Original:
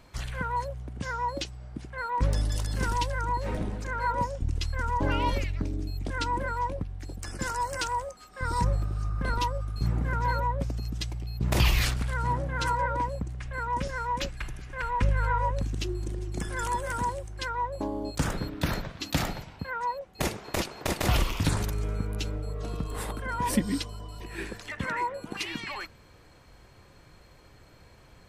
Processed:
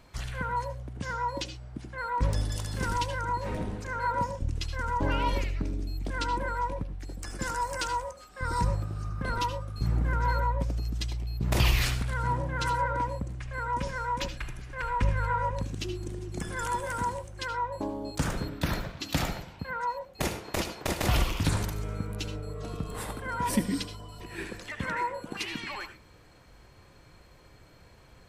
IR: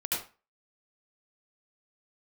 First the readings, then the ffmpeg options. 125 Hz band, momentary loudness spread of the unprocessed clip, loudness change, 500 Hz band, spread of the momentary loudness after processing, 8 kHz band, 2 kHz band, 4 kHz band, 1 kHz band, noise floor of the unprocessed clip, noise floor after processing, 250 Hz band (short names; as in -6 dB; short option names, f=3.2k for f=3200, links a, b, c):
-1.0 dB, 9 LU, -1.0 dB, -1.0 dB, 10 LU, -1.0 dB, -0.5 dB, -0.5 dB, -1.0 dB, -55 dBFS, -55 dBFS, -1.0 dB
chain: -filter_complex "[0:a]asplit=2[a][b];[1:a]atrim=start_sample=2205,atrim=end_sample=6174[c];[b][c]afir=irnorm=-1:irlink=0,volume=-13.5dB[d];[a][d]amix=inputs=2:normalize=0,volume=-2.5dB"